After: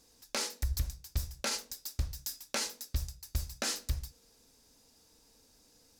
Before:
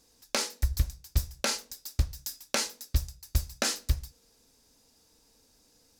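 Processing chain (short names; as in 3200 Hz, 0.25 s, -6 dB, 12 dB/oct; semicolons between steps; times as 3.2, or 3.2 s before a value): limiter -23 dBFS, peak gain reduction 7.5 dB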